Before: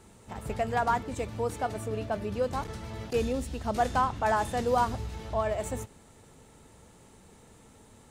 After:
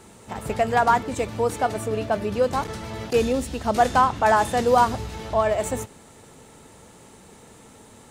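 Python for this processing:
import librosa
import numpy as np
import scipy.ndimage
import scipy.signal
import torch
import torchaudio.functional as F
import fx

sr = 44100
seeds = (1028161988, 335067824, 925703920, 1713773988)

y = fx.low_shelf(x, sr, hz=98.0, db=-10.0)
y = y * 10.0 ** (8.5 / 20.0)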